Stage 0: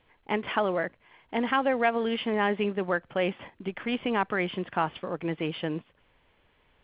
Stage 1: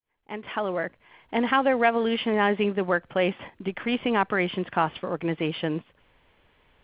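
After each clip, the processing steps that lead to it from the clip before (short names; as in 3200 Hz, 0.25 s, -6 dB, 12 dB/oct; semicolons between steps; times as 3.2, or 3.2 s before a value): opening faded in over 1.15 s; gain +3.5 dB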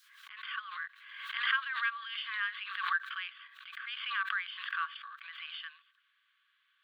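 rippled Chebyshev high-pass 1100 Hz, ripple 9 dB; backwards sustainer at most 54 dB/s; gain -2 dB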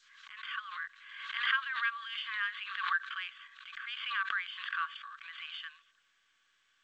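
G.722 64 kbps 16000 Hz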